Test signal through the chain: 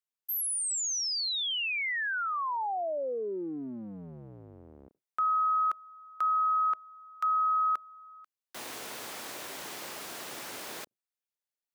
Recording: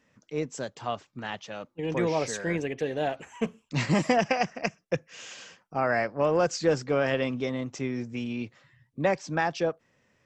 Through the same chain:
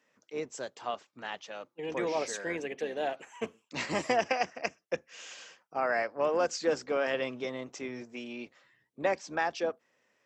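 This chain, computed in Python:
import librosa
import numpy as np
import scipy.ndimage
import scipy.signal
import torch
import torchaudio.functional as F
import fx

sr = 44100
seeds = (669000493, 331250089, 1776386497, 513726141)

y = fx.octave_divider(x, sr, octaves=1, level_db=-4.0)
y = scipy.signal.sosfilt(scipy.signal.butter(2, 360.0, 'highpass', fs=sr, output='sos'), y)
y = y * 10.0 ** (-3.0 / 20.0)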